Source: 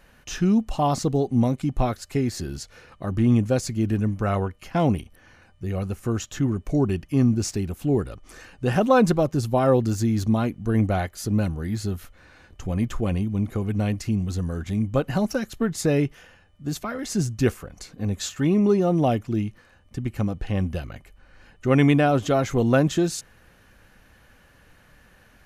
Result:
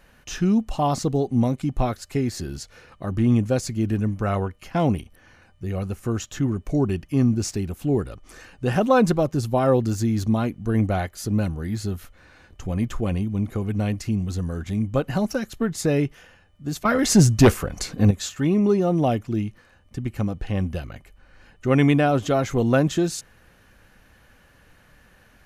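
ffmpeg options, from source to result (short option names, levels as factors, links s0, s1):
-filter_complex "[0:a]asettb=1/sr,asplit=3[s0][s1][s2];[s0]atrim=end=16.854[s3];[s1]atrim=start=16.85:end=18.11,asetpts=PTS-STARTPTS,afade=t=in:d=0.004:c=qsin,afade=t=out:st=1.256:d=0.004:c=qsin,aeval=exprs='0.447*sin(PI/2*2.24*val(0)/0.447)':c=same[s4];[s2]atrim=start=18.106[s5];[s3][s4]acrossfade=d=0.004:c1=hsin:c2=qsin[s6];[s6][s5]acrossfade=d=0.004:c1=qsin:c2=hsin"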